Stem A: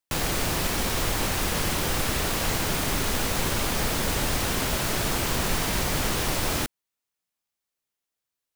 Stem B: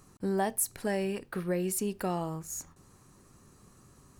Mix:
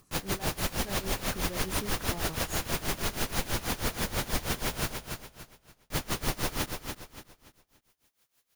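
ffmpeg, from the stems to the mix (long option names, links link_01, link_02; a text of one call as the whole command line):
ffmpeg -i stem1.wav -i stem2.wav -filter_complex "[0:a]acompressor=mode=upward:threshold=-48dB:ratio=2.5,bandreject=frequency=7900:width=12,aeval=exprs='val(0)*pow(10,-27*(0.5-0.5*cos(2*PI*6.2*n/s))/20)':channel_layout=same,volume=-1dB,asplit=3[link_01][link_02][link_03];[link_01]atrim=end=4.92,asetpts=PTS-STARTPTS,afade=type=out:start_time=4.916:duration=0.004:curve=hsin[link_04];[link_02]atrim=start=4.92:end=5.9,asetpts=PTS-STARTPTS,volume=0[link_05];[link_03]atrim=start=5.9,asetpts=PTS-STARTPTS,afade=type=in:duration=0.004:curve=hsin[link_06];[link_04][link_05][link_06]concat=n=3:v=0:a=1,asplit=2[link_07][link_08];[link_08]volume=-6dB[link_09];[1:a]alimiter=level_in=3.5dB:limit=-24dB:level=0:latency=1,volume=-3.5dB,acrossover=split=1800[link_10][link_11];[link_10]aeval=exprs='val(0)*(1-0.7/2+0.7/2*cos(2*PI*6.5*n/s))':channel_layout=same[link_12];[link_11]aeval=exprs='val(0)*(1-0.7/2-0.7/2*cos(2*PI*6.5*n/s))':channel_layout=same[link_13];[link_12][link_13]amix=inputs=2:normalize=0,volume=-2.5dB[link_14];[link_09]aecho=0:1:287|574|861|1148|1435:1|0.34|0.116|0.0393|0.0134[link_15];[link_07][link_14][link_15]amix=inputs=3:normalize=0" out.wav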